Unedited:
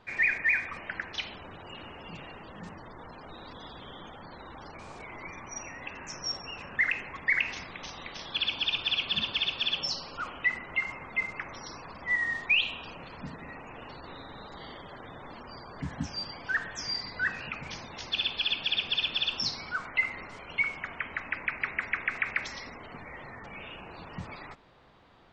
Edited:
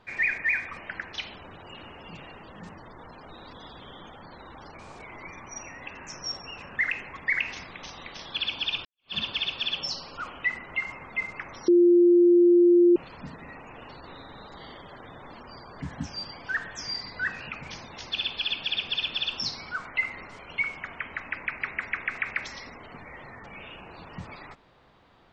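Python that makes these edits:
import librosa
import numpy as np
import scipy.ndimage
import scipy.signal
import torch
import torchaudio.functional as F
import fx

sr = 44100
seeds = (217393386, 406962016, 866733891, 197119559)

y = fx.edit(x, sr, fx.fade_in_span(start_s=8.85, length_s=0.29, curve='exp'),
    fx.bleep(start_s=11.68, length_s=1.28, hz=349.0, db=-14.0), tone=tone)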